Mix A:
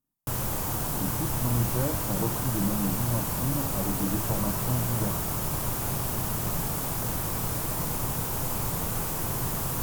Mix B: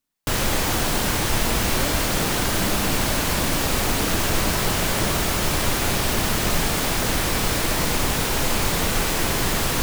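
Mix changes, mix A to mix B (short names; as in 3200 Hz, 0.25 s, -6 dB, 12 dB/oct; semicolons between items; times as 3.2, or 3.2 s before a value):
background +11.5 dB; master: add ten-band EQ 125 Hz -10 dB, 1000 Hz -5 dB, 2000 Hz +6 dB, 4000 Hz +6 dB, 16000 Hz -11 dB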